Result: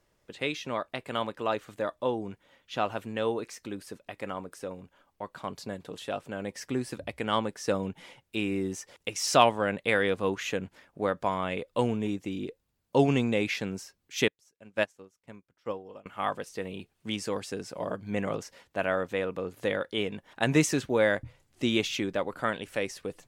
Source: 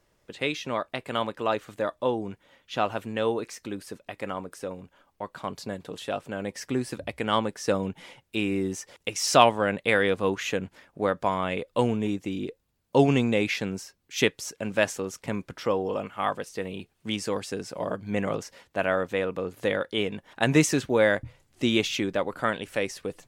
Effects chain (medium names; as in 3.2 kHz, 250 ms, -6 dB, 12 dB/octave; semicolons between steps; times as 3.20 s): 14.28–16.06 s: upward expansion 2.5:1, over -37 dBFS; trim -3 dB